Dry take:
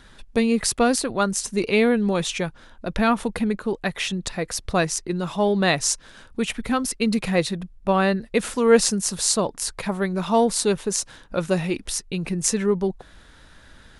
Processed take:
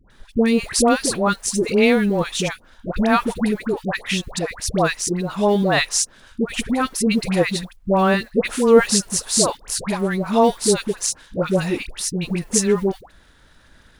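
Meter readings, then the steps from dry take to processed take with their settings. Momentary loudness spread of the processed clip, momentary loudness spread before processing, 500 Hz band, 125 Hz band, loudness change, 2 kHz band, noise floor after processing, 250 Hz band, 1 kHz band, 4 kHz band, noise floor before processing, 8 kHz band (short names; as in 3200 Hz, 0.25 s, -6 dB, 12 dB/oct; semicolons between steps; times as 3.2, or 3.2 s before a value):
9 LU, 9 LU, +3.0 dB, +3.0 dB, +3.0 dB, +3.0 dB, -52 dBFS, +3.0 dB, +3.0 dB, +3.0 dB, -50 dBFS, +3.0 dB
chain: G.711 law mismatch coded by A; dispersion highs, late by 0.104 s, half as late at 900 Hz; gain +3.5 dB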